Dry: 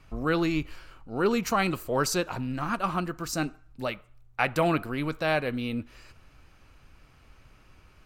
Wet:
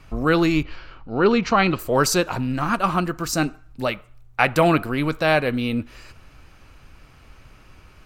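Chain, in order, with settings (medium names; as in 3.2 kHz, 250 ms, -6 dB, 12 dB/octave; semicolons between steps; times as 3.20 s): 0.63–1.79 s: low-pass 4.8 kHz 24 dB/octave; trim +7.5 dB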